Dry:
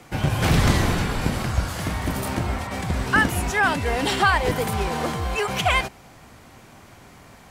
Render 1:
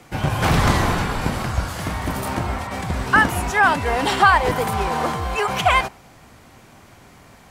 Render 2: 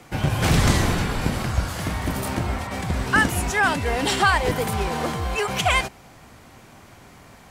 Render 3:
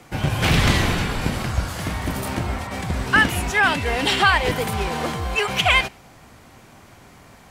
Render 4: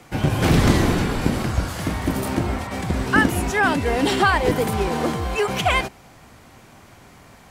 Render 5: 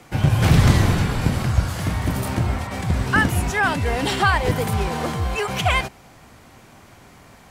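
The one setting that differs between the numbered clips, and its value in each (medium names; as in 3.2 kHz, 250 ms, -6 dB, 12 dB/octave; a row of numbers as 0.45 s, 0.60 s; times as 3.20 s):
dynamic bell, frequency: 1 kHz, 7.6 kHz, 2.8 kHz, 310 Hz, 110 Hz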